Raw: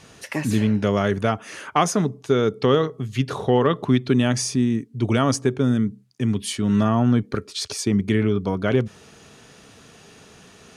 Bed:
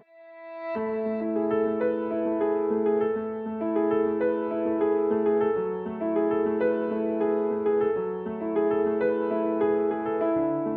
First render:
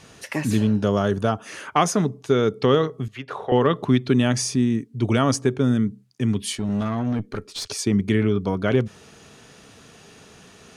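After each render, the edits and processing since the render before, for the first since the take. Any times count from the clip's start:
0:00.57–0:01.46: parametric band 2,100 Hz −14 dB 0.39 octaves
0:03.08–0:03.52: three-way crossover with the lows and the highs turned down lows −17 dB, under 460 Hz, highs −15 dB, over 2,600 Hz
0:06.55–0:07.67: tube saturation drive 19 dB, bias 0.55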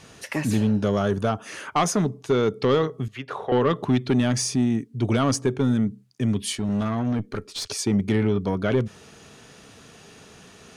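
soft clipping −12.5 dBFS, distortion −16 dB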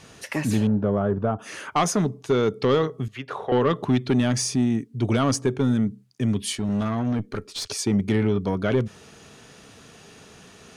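0:00.67–0:01.39: low-pass filter 1,200 Hz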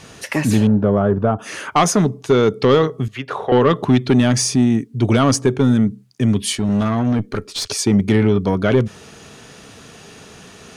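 level +7 dB

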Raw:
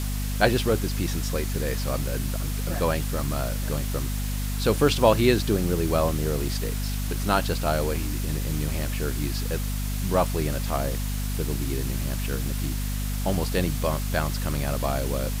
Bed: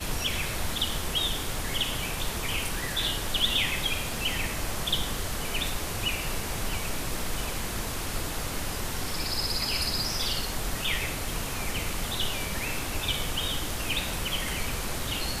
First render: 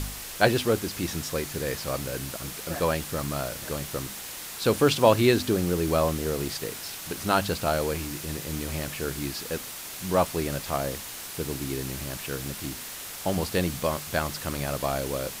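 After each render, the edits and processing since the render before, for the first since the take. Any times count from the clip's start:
hum removal 50 Hz, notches 5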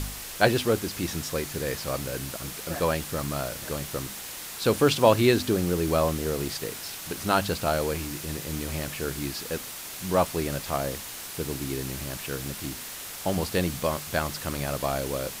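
no processing that can be heard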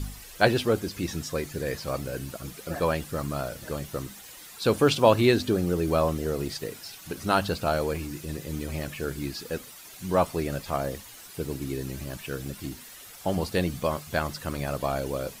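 broadband denoise 11 dB, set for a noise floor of −39 dBFS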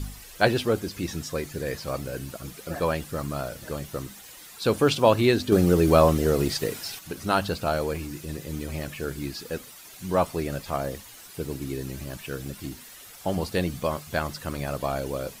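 0:05.52–0:06.99: clip gain +6.5 dB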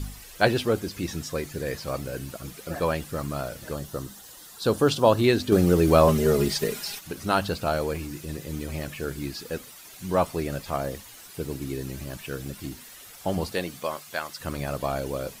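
0:03.74–0:05.24: parametric band 2,300 Hz −10.5 dB 0.45 octaves
0:06.07–0:07.01: comb filter 4.9 ms
0:13.52–0:14.39: high-pass filter 340 Hz → 1,300 Hz 6 dB per octave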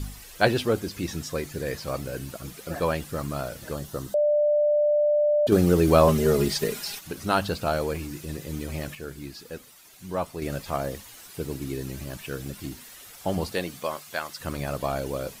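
0:04.14–0:05.47: beep over 593 Hz −18 dBFS
0:08.95–0:10.42: clip gain −6 dB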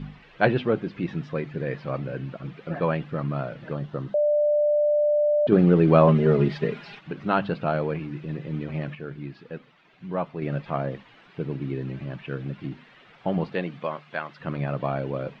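low-pass filter 2,900 Hz 24 dB per octave
low shelf with overshoot 110 Hz −8 dB, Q 3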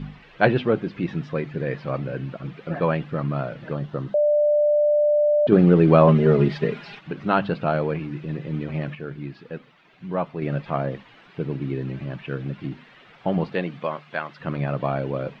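level +2.5 dB
brickwall limiter −2 dBFS, peak gain reduction 1 dB

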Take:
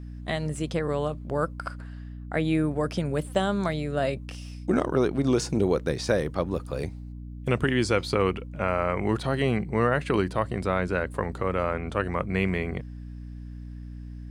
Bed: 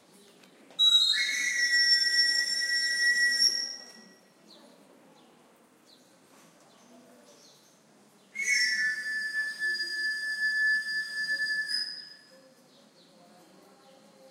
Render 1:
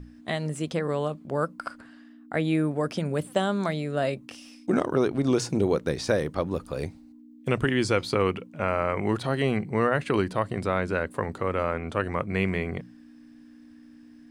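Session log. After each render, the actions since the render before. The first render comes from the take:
mains-hum notches 60/120/180 Hz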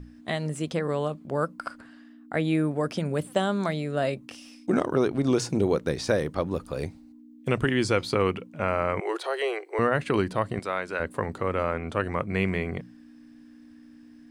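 0:09.00–0:09.79: Butterworth high-pass 340 Hz 96 dB per octave
0:10.59–0:11.00: high-pass filter 700 Hz 6 dB per octave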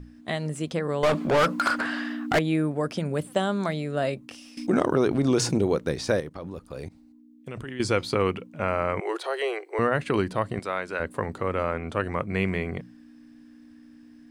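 0:01.03–0:02.39: mid-hump overdrive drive 33 dB, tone 3,400 Hz, clips at −13 dBFS
0:04.57–0:05.58: envelope flattener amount 50%
0:06.20–0:07.80: output level in coarse steps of 18 dB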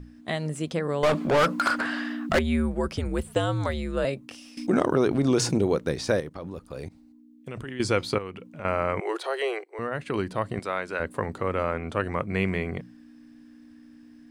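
0:02.29–0:04.05: frequency shifter −84 Hz
0:08.18–0:08.65: downward compressor 2.5 to 1, threshold −38 dBFS
0:09.64–0:10.62: fade in, from −12.5 dB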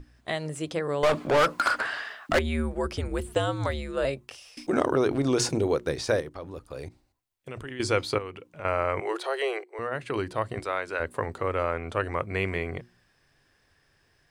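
parametric band 190 Hz −10 dB 0.56 octaves
mains-hum notches 60/120/180/240/300/360 Hz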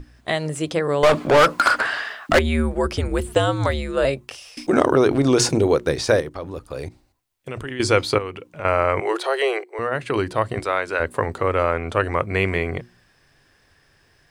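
level +7.5 dB

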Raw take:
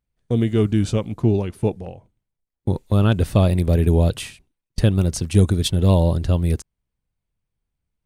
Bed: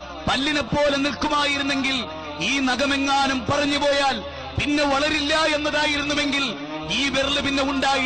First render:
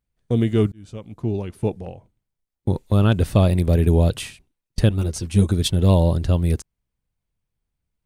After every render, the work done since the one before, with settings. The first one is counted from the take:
0:00.72–0:01.90: fade in
0:04.89–0:05.52: string-ensemble chorus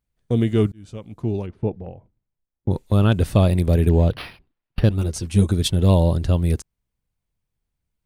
0:01.46–0:02.71: head-to-tape spacing loss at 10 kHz 34 dB
0:03.89–0:04.91: linearly interpolated sample-rate reduction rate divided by 6×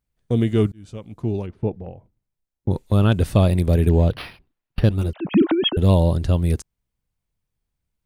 0:05.13–0:05.77: three sine waves on the formant tracks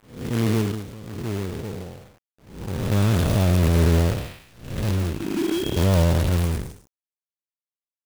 spectrum smeared in time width 279 ms
log-companded quantiser 4 bits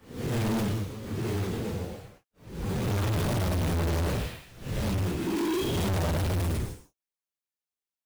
random phases in long frames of 100 ms
gain into a clipping stage and back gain 25.5 dB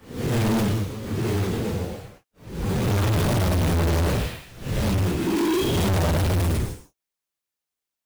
level +6 dB

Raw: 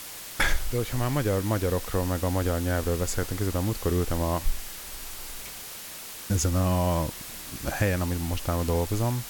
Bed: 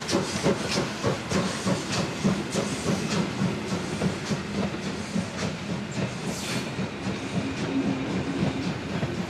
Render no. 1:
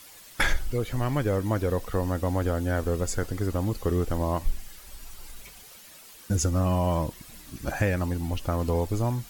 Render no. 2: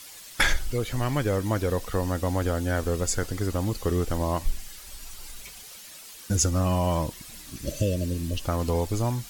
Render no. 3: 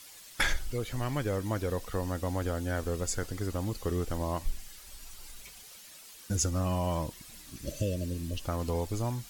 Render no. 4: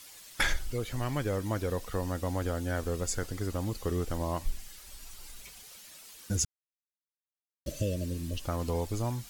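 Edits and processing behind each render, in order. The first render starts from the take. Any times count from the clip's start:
broadband denoise 11 dB, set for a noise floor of −40 dBFS
0:07.64–0:08.36: healed spectral selection 660–2,600 Hz; parametric band 6,000 Hz +6 dB 2.8 octaves
level −6 dB
0:06.45–0:07.66: silence

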